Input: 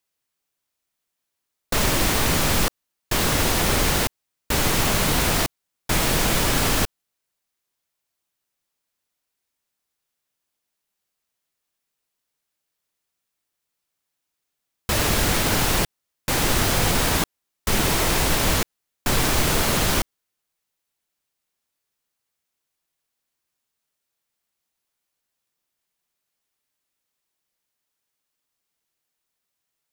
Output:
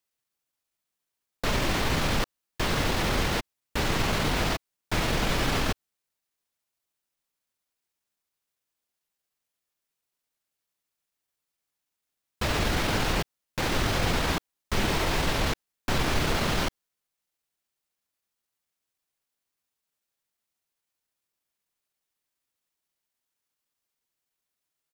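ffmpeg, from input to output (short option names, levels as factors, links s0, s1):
-filter_complex "[0:a]acrossover=split=5400[s0][s1];[s1]acompressor=threshold=0.0126:ratio=4:attack=1:release=60[s2];[s0][s2]amix=inputs=2:normalize=0,atempo=1.2,volume=0.631"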